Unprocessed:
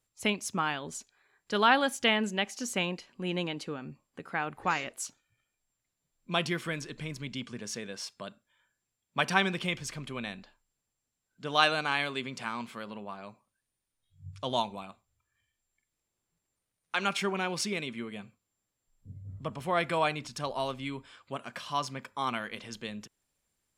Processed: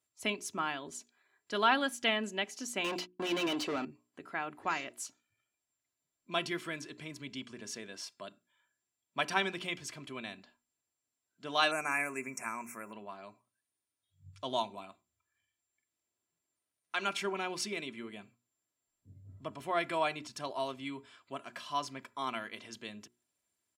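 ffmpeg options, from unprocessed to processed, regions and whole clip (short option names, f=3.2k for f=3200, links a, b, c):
-filter_complex "[0:a]asettb=1/sr,asplit=3[a][b][c];[a]atrim=end=2.844[d];[b]atrim=start=2.84:end=3.85,asetpts=PTS-STARTPTS,afade=t=in:d=0.004:c=qsin,afade=t=out:st=1.006:d=0.004:c=qsin,equalizer=f=1.8k:t=o:w=0.52:g=-11.5,asplit=2[e][f];[f]highpass=f=720:p=1,volume=28dB,asoftclip=type=tanh:threshold=-21dB[g];[e][g]amix=inputs=2:normalize=0,lowpass=f=3.5k:p=1,volume=-6dB,agate=range=-43dB:threshold=-39dB:ratio=16:release=100:detection=peak[h];[c]atrim=start=3.846[i];[d][h]acrossfade=d=0.004:c1=hsin:c2=qsin[j];[j][i]acrossfade=d=0.004:c1=qsin:c2=hsin,asettb=1/sr,asplit=3[k][l][m];[k]atrim=end=11.714[n];[l]atrim=start=11.71:end=12.93,asetpts=PTS-STARTPTS,afade=t=in:d=0.004:c=qsin,afade=t=out:st=1.216:d=0.004:c=qsin,asuperstop=centerf=3800:order=20:qfactor=1.3,aemphasis=mode=production:type=75kf[o];[m]atrim=start=12.926[p];[n][o]acrossfade=d=0.004:c1=hsin:c2=qsin[q];[q][p]acrossfade=d=0.004:c1=qsin:c2=hsin,highpass=110,bandreject=f=60:t=h:w=6,bandreject=f=120:t=h:w=6,bandreject=f=180:t=h:w=6,bandreject=f=240:t=h:w=6,bandreject=f=300:t=h:w=6,bandreject=f=360:t=h:w=6,bandreject=f=420:t=h:w=6,aecho=1:1:3:0.47,volume=-5dB"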